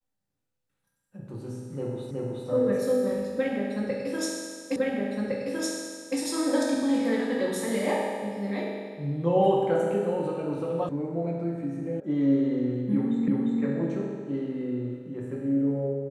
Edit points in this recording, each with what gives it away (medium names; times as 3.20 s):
2.11 s: repeat of the last 0.37 s
4.76 s: repeat of the last 1.41 s
10.89 s: sound stops dead
12.00 s: sound stops dead
13.28 s: repeat of the last 0.35 s